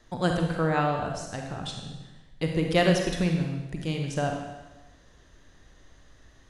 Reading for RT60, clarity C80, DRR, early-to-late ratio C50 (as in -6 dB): 1.1 s, 5.5 dB, 2.0 dB, 3.0 dB